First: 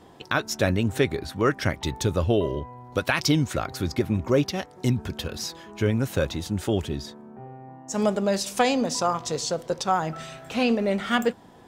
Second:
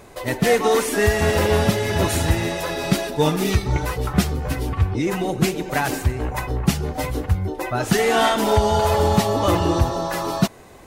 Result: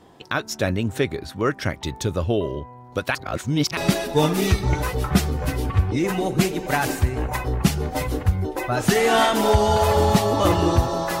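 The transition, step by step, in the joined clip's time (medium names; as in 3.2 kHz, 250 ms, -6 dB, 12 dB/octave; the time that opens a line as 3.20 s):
first
3.15–3.77 s: reverse
3.77 s: go over to second from 2.80 s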